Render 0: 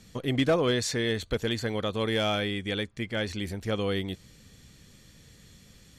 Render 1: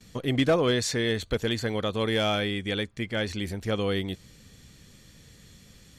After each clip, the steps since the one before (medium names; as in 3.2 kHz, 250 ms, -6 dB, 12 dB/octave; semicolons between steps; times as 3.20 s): gate with hold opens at -46 dBFS; trim +1.5 dB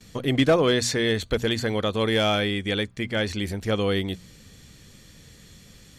hum notches 60/120/180/240 Hz; trim +3.5 dB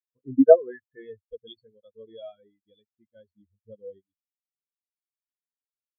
reverb removal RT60 0.91 s; low-pass sweep 1.5 kHz -> 6.1 kHz, 0.41–2.08 s; spectral contrast expander 4:1; trim +5 dB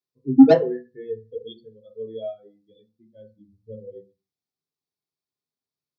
hum notches 60/120/180/240/300 Hz; saturation -15.5 dBFS, distortion -7 dB; reverberation RT60 0.30 s, pre-delay 3 ms, DRR 0 dB; trim -4.5 dB